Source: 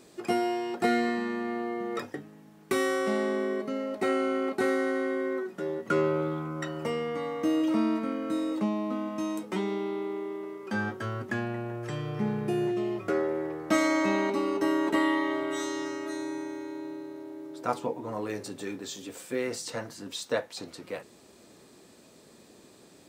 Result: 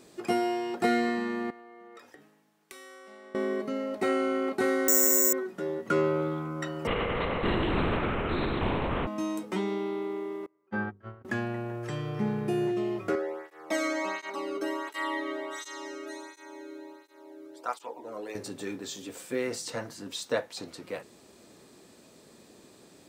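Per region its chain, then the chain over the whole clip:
0:01.50–0:03.35: high-pass filter 760 Hz 6 dB per octave + downward compressor 16 to 1, threshold −45 dBFS + multiband upward and downward expander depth 70%
0:04.88–0:05.33: high-pass filter 230 Hz + high-shelf EQ 5,500 Hz −6.5 dB + bad sample-rate conversion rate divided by 6×, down none, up zero stuff
0:06.87–0:09.07: high-frequency loss of the air 330 metres + linear-prediction vocoder at 8 kHz whisper + every bin compressed towards the loudest bin 2 to 1
0:10.46–0:11.25: low-pass filter 2,000 Hz + noise gate −32 dBFS, range −28 dB + mains-hum notches 50/100/150/200/250/300/350/400/450 Hz
0:13.15–0:18.35: high-pass filter 450 Hz 6 dB per octave + through-zero flanger with one copy inverted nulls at 1.4 Hz, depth 1.2 ms
whole clip: no processing

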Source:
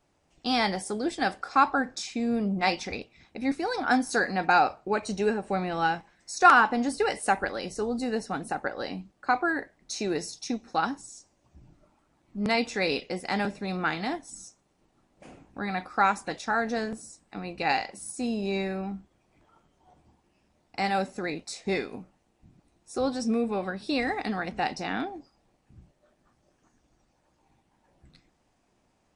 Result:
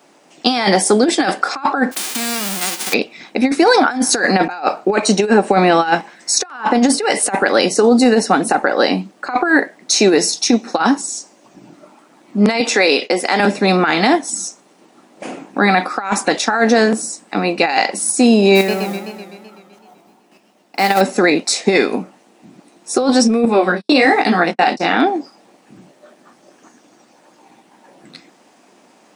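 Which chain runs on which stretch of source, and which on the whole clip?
0:01.91–0:02.92: spectral envelope flattened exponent 0.1 + downward compressor 4 to 1, threshold −41 dBFS
0:12.60–0:13.40: high-pass filter 280 Hz + downward expander −47 dBFS + downward compressor 2 to 1, threshold −33 dBFS
0:18.55–0:21.01: square-wave tremolo 1.7 Hz, depth 60%, duty 10% + noise that follows the level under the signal 20 dB + feedback echo with a swinging delay time 127 ms, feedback 66%, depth 157 cents, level −10 dB
0:23.45–0:24.97: noise gate −37 dBFS, range −46 dB + chorus effect 1.1 Hz, delay 17 ms, depth 7.2 ms
whole clip: high-pass filter 210 Hz 24 dB per octave; compressor whose output falls as the input rises −29 dBFS, ratio −0.5; boost into a limiter +19 dB; level −1 dB

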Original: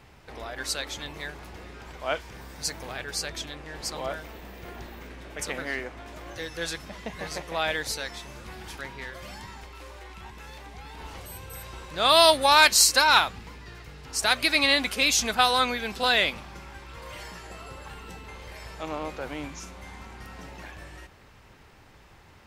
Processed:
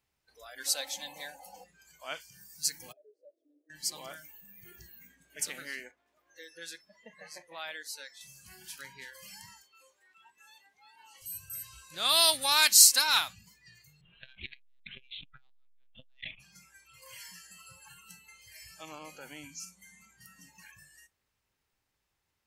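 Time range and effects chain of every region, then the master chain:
0:00.66–0:01.64: high-pass filter 52 Hz + flat-topped bell 690 Hz +11 dB 1 octave + comb filter 3.9 ms, depth 50%
0:02.92–0:03.70: elliptic band-pass filter 290–610 Hz + spectral tilt +2 dB per octave
0:05.91–0:08.21: high-pass filter 360 Hz 6 dB per octave + high-shelf EQ 2,700 Hz −11.5 dB
0:09.62–0:11.22: high-pass filter 210 Hz + high-shelf EQ 3,900 Hz −5 dB
0:14.01–0:16.40: downward compressor 5 to 1, threshold −23 dBFS + one-pitch LPC vocoder at 8 kHz 130 Hz + saturating transformer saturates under 620 Hz
whole clip: first-order pre-emphasis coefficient 0.8; noise reduction from a noise print of the clip's start 20 dB; dynamic equaliser 490 Hz, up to −5 dB, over −52 dBFS, Q 0.88; level +2.5 dB

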